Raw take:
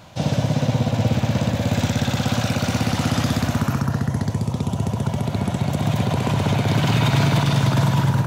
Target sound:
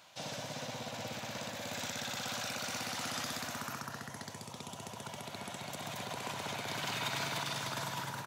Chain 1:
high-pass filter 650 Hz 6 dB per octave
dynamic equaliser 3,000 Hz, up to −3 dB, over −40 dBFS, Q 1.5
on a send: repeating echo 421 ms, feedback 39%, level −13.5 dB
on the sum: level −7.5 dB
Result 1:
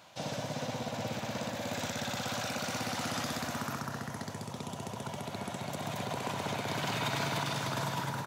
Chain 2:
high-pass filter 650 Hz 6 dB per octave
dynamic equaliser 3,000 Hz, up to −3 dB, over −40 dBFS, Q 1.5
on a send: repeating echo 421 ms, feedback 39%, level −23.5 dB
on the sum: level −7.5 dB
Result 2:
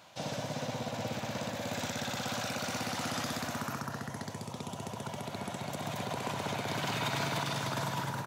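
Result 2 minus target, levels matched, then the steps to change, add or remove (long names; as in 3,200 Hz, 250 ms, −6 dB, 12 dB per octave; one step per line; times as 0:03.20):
500 Hz band +3.0 dB
change: high-pass filter 1,600 Hz 6 dB per octave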